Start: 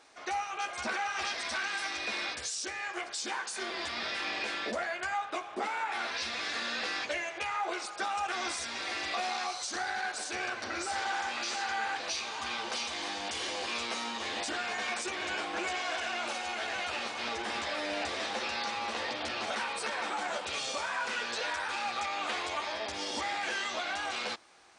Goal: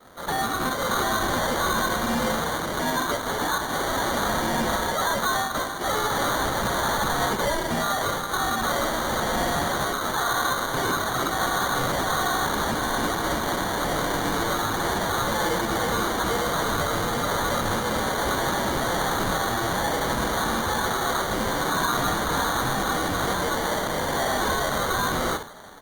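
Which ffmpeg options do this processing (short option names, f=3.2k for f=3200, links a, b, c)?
-filter_complex "[0:a]tiltshelf=f=800:g=-9,asplit=2[a][b];[b]adelay=1749,volume=-17dB,highshelf=f=4k:g=-39.4[c];[a][c]amix=inputs=2:normalize=0,aresample=11025,asoftclip=type=hard:threshold=-32.5dB,aresample=44100,asetrate=42336,aresample=44100,asplit=2[d][e];[e]aecho=0:1:63|126|189:0.335|0.0837|0.0209[f];[d][f]amix=inputs=2:normalize=0,adynamicequalizer=threshold=0.00501:dfrequency=1600:dqfactor=1.2:tfrequency=1600:tqfactor=1.2:attack=5:release=100:ratio=0.375:range=2:mode=boostabove:tftype=bell,acrusher=samples=17:mix=1:aa=0.000001,volume=7.5dB" -ar 48000 -c:a libopus -b:a 32k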